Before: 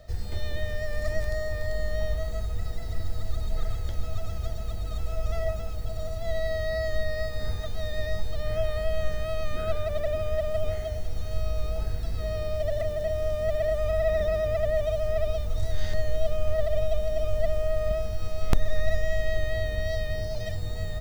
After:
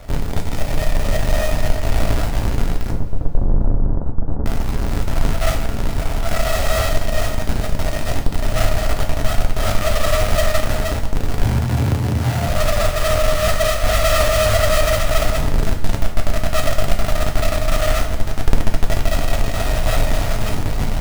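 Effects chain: square wave that keeps the level; 11.43–12.48 s: frequency shift +71 Hz; in parallel at +2 dB: peak limiter -17.5 dBFS, peak gain reduction 38 dB; 2.91–4.45 s: on the sum: Gaussian low-pass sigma 8.6 samples; two-slope reverb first 0.44 s, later 2.7 s, from -18 dB, DRR 1.5 dB; trim -2 dB

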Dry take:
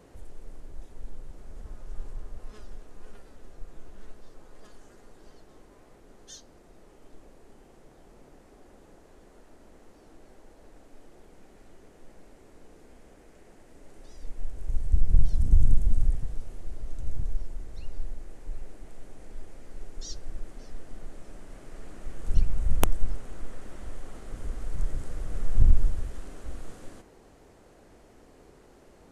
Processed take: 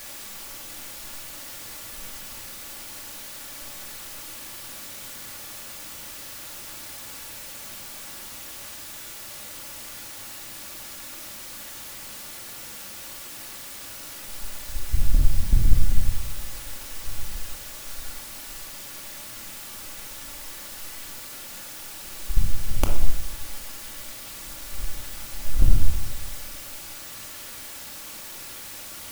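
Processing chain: power-law waveshaper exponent 2; added noise white -41 dBFS; reverberation RT60 0.80 s, pre-delay 3 ms, DRR 1 dB

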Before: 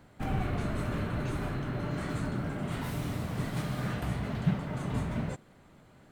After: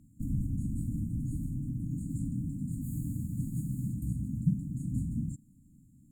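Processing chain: brick-wall FIR band-stop 310–6600 Hz

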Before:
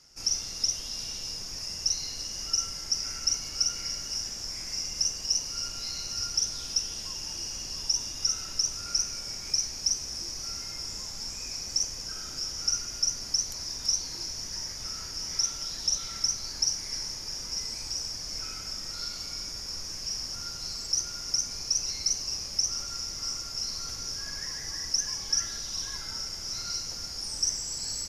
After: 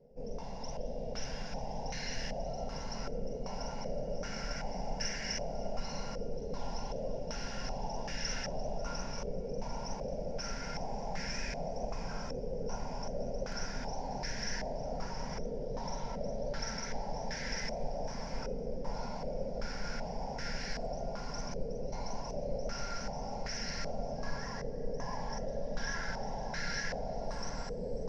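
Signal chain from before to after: static phaser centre 330 Hz, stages 6; shuffle delay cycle 902 ms, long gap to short 1.5:1, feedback 64%, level -4.5 dB; step-sequenced low-pass 2.6 Hz 480–1700 Hz; trim +7.5 dB

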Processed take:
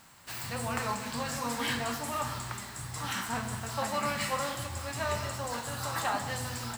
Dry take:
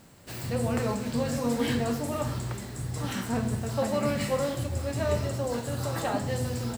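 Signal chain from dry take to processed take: resonant low shelf 690 Hz -10 dB, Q 1.5; on a send: two-band feedback delay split 990 Hz, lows 156 ms, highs 212 ms, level -14.5 dB; on the sum: trim +1.5 dB

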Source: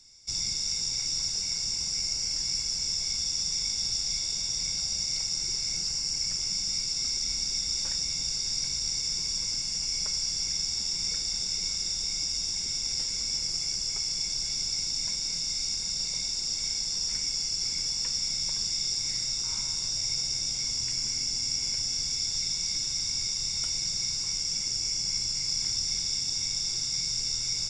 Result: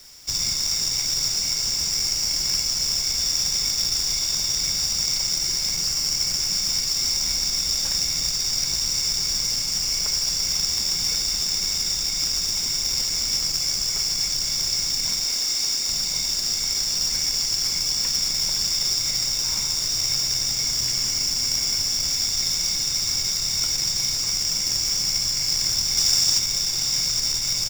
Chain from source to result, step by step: 15.24–15.89 s: steep high-pass 230 Hz 36 dB/octave; 25.97–26.39 s: treble shelf 3.8 kHz +6.5 dB; companded quantiser 4-bit; delay 879 ms -12.5 dB; transformer saturation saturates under 250 Hz; trim +6.5 dB

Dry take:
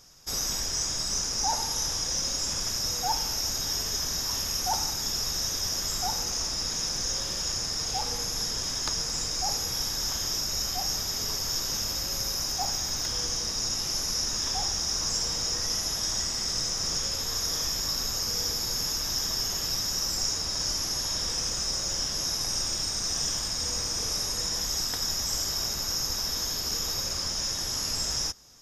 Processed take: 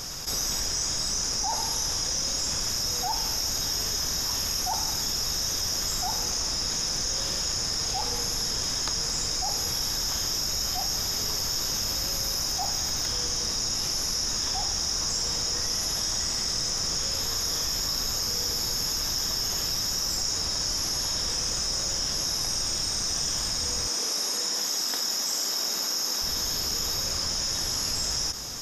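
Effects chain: 23.88–26.22 s: high-pass 220 Hz 24 dB/octave; level flattener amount 70%; trim -2.5 dB

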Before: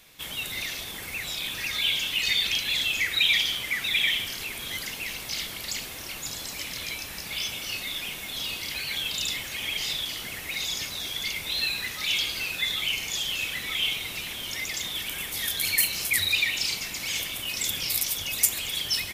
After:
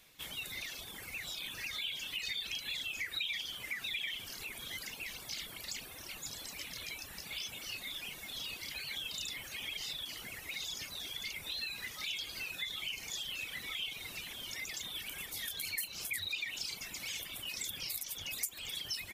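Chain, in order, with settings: compression 2.5:1, threshold -29 dBFS, peak gain reduction 9.5 dB; reverb removal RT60 0.86 s; trim -7.5 dB

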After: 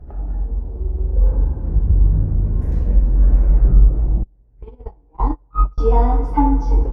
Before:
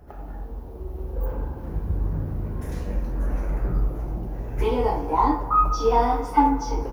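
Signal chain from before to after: 4.23–5.78 s: gate -17 dBFS, range -34 dB; tilt EQ -3.5 dB/octave; trim -2.5 dB

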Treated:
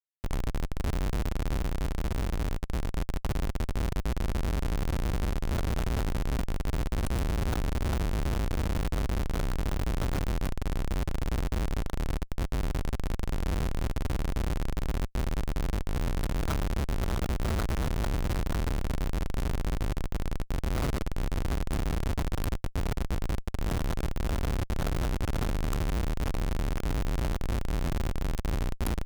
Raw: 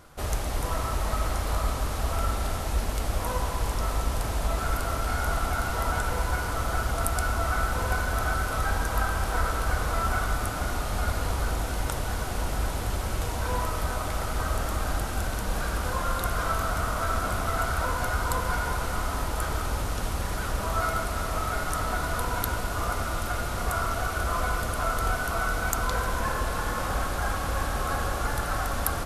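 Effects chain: Schmitt trigger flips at -22 dBFS; 1.60–2.97 s: upward expansion 1.5:1, over -37 dBFS

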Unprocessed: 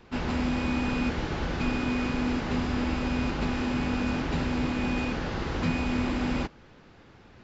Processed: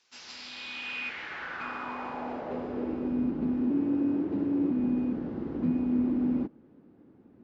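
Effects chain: band-pass sweep 6.1 kHz -> 270 Hz, 0.14–3.26 s; 3.70–4.71 s: frequency shift +35 Hz; trim +4 dB

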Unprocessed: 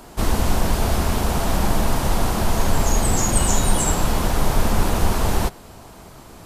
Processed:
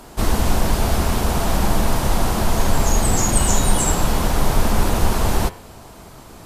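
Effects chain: de-hum 88.47 Hz, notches 37; trim +2 dB; MP3 112 kbps 44.1 kHz

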